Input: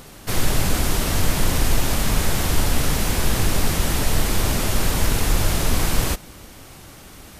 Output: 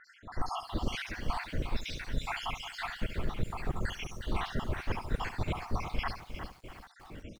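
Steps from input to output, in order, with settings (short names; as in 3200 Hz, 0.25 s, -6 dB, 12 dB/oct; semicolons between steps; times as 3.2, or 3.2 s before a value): random spectral dropouts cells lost 79%; LPF 2700 Hz 12 dB/oct; reverse; compressor 5:1, threshold -28 dBFS, peak gain reduction 14 dB; reverse; echo 70 ms -11 dB; lo-fi delay 0.357 s, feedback 35%, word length 9-bit, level -9 dB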